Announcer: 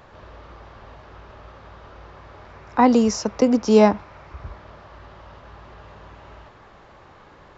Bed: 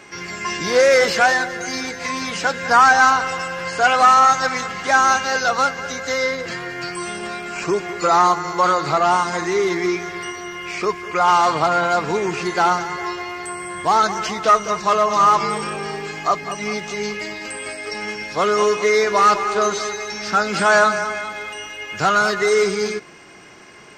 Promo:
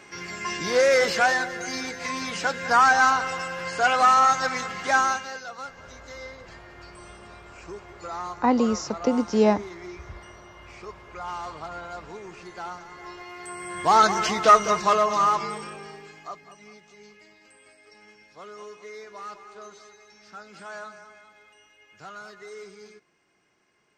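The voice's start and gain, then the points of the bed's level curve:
5.65 s, −5.5 dB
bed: 0:04.98 −5.5 dB
0:05.46 −19.5 dB
0:12.80 −19.5 dB
0:14.01 −0.5 dB
0:14.69 −0.5 dB
0:16.80 −25 dB

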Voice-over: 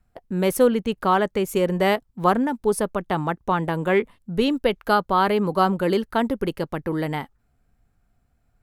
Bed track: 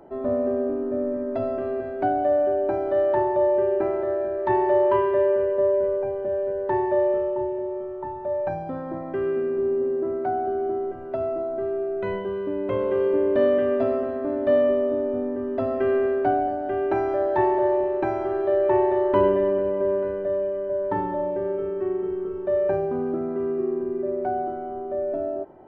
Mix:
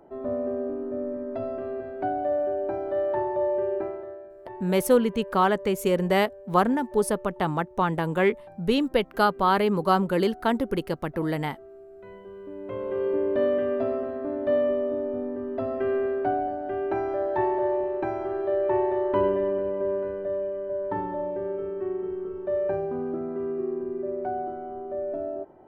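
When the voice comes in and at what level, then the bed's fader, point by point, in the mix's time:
4.30 s, −2.0 dB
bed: 0:03.77 −5 dB
0:04.33 −20 dB
0:11.88 −20 dB
0:13.09 −4 dB

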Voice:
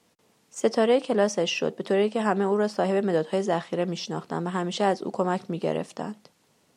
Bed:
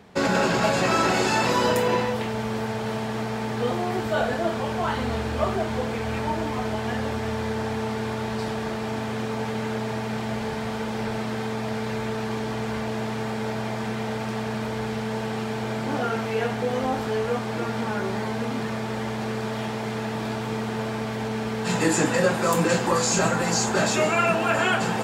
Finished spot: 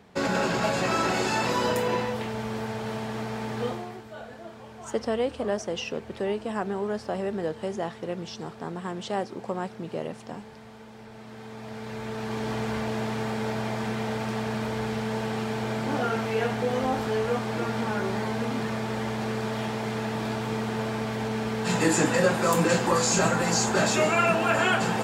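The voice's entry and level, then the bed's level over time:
4.30 s, −6.0 dB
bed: 0:03.65 −4 dB
0:04.05 −17.5 dB
0:11.08 −17.5 dB
0:12.50 −1 dB

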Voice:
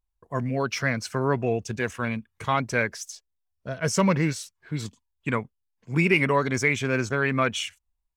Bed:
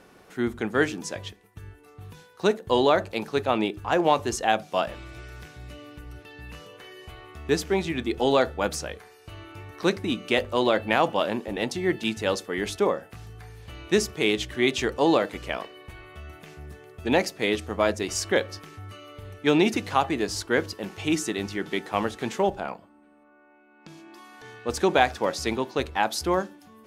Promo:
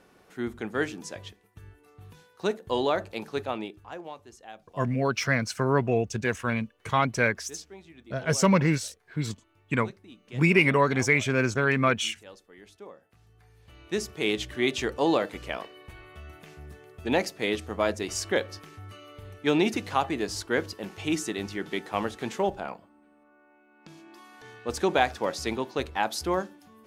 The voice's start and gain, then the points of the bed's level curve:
4.45 s, +0.5 dB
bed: 0:03.41 −5.5 dB
0:04.19 −22.5 dB
0:12.85 −22.5 dB
0:14.31 −3 dB

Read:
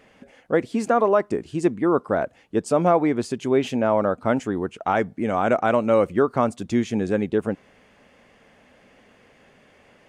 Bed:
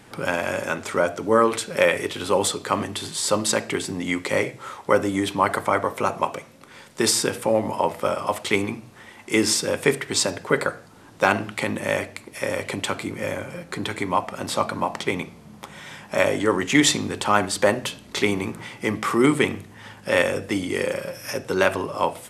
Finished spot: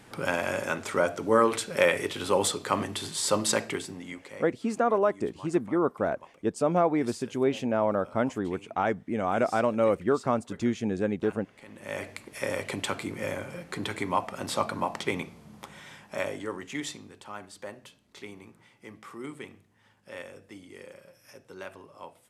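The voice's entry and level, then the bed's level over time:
3.90 s, −5.5 dB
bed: 0:03.63 −4 dB
0:04.59 −27 dB
0:11.59 −27 dB
0:12.09 −5 dB
0:15.60 −5 dB
0:17.19 −22 dB

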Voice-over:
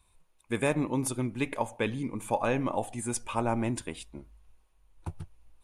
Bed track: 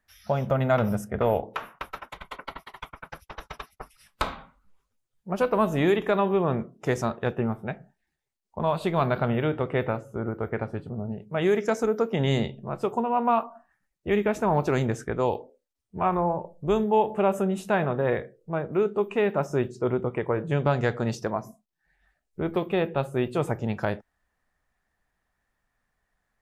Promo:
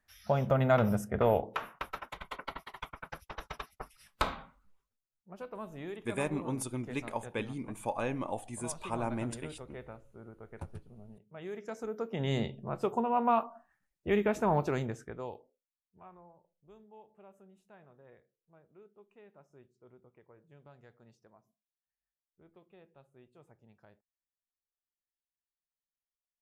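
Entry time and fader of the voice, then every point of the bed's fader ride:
5.55 s, −6.0 dB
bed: 0:04.62 −3 dB
0:05.21 −20 dB
0:11.43 −20 dB
0:12.54 −4.5 dB
0:14.52 −4.5 dB
0:16.34 −33.5 dB

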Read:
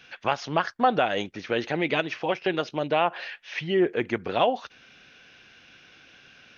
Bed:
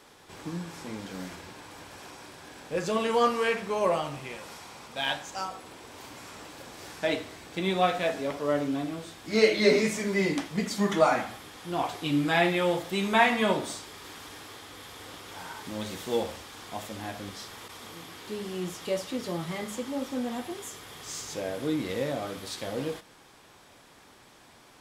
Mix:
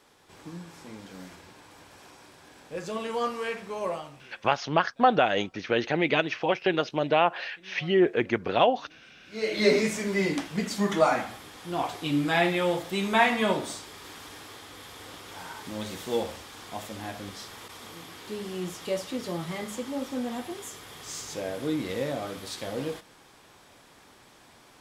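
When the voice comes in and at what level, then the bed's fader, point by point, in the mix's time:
4.20 s, +1.0 dB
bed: 0:03.90 −5.5 dB
0:04.72 −25.5 dB
0:09.15 −25.5 dB
0:09.59 0 dB

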